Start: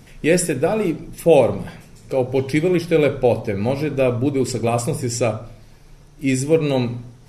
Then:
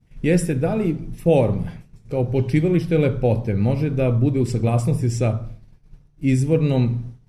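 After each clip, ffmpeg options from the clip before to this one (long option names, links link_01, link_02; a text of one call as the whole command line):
ffmpeg -i in.wav -af "bass=frequency=250:gain=12,treble=frequency=4000:gain=-4,agate=range=-33dB:threshold=-25dB:ratio=3:detection=peak,volume=-5.5dB" out.wav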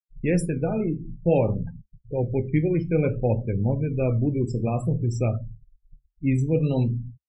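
ffmpeg -i in.wav -af "afftfilt=real='re*gte(hypot(re,im),0.0398)':imag='im*gte(hypot(re,im),0.0398)':win_size=1024:overlap=0.75,flanger=delay=7.2:depth=6.7:regen=-66:speed=0.55:shape=sinusoidal" out.wav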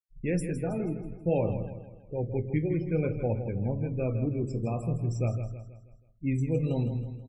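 ffmpeg -i in.wav -af "aecho=1:1:161|322|483|644|805:0.316|0.139|0.0612|0.0269|0.0119,volume=-6.5dB" out.wav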